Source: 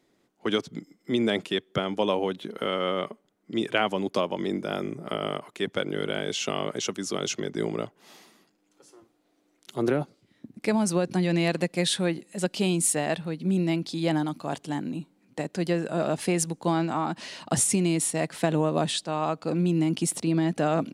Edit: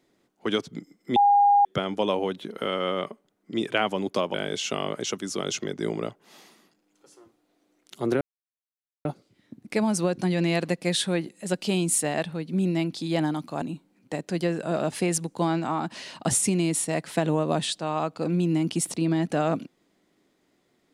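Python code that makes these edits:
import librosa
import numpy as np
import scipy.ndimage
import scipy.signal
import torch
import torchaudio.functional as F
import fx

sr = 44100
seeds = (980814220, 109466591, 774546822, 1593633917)

y = fx.edit(x, sr, fx.bleep(start_s=1.16, length_s=0.49, hz=812.0, db=-14.5),
    fx.cut(start_s=4.34, length_s=1.76),
    fx.insert_silence(at_s=9.97, length_s=0.84),
    fx.cut(start_s=14.54, length_s=0.34), tone=tone)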